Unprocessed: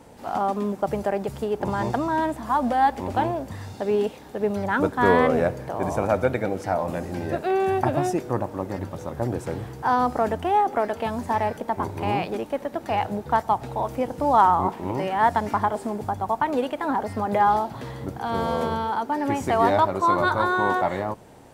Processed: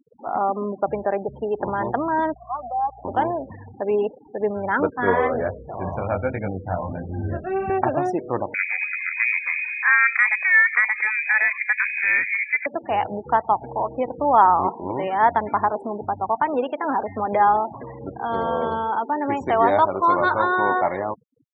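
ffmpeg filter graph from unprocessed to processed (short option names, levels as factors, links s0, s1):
-filter_complex "[0:a]asettb=1/sr,asplit=3[s0][s1][s2];[s0]atrim=end=2.344[s3];[s1]atrim=start=2.34:end=3.05,asetpts=PTS-STARTPTS,afade=t=in:d=0.004:c=qsin,afade=t=out:st=0.706:d=0.004:c=qsin,asplit=3[s4][s5][s6];[s4]bandpass=f=730:t=q:w=8,volume=1[s7];[s5]bandpass=f=1090:t=q:w=8,volume=0.501[s8];[s6]bandpass=f=2440:t=q:w=8,volume=0.355[s9];[s7][s8][s9]amix=inputs=3:normalize=0,aeval=exprs='val(0)+0.00631*(sin(2*PI*60*n/s)+sin(2*PI*2*60*n/s)/2+sin(2*PI*3*60*n/s)/3+sin(2*PI*4*60*n/s)/4+sin(2*PI*5*60*n/s)/5)':c=same[s10];[s2]atrim=start=3.046[s11];[s3][s10]acrossfade=d=0.004:c1=hsin:c2=qsin[s12];[s12][s11]acrossfade=d=0.004:c1=qsin:c2=hsin,asettb=1/sr,asplit=3[s13][s14][s15];[s13]atrim=end=4.904[s16];[s14]atrim=start=4.9:end=7.7,asetpts=PTS-STARTPTS,afade=t=in:d=0.004:c=qsin,afade=t=out:st=2.796:d=0.004:c=qsin,asubboost=boost=11:cutoff=160,flanger=delay=19:depth=3.5:speed=1.4[s17];[s15]atrim=start=7.696[s18];[s16][s17]acrossfade=d=0.004:c1=hsin:c2=qsin[s19];[s19][s18]acrossfade=d=0.004:c1=qsin:c2=hsin,asettb=1/sr,asplit=3[s20][s21][s22];[s20]atrim=end=8.544[s23];[s21]atrim=start=8.54:end=12.66,asetpts=PTS-STARTPTS,afade=t=in:d=0.004:c=qsin,afade=t=out:st=4.116:d=0.004:c=qsin,acompressor=mode=upward:threshold=0.0562:ratio=2.5:attack=3.2:release=140:knee=2.83:detection=peak,lowpass=f=2200:t=q:w=0.5098,lowpass=f=2200:t=q:w=0.6013,lowpass=f=2200:t=q:w=0.9,lowpass=f=2200:t=q:w=2.563,afreqshift=-2600,highshelf=f=2000:g=5[s24];[s22]atrim=start=12.656[s25];[s23][s24]acrossfade=d=0.004:c1=hsin:c2=qsin[s26];[s26][s25]acrossfade=d=0.004:c1=qsin:c2=hsin,afftfilt=real='re*gte(hypot(re,im),0.0251)':imag='im*gte(hypot(re,im),0.0251)':win_size=1024:overlap=0.75,bass=f=250:g=-8,treble=f=4000:g=-11,volume=1.33"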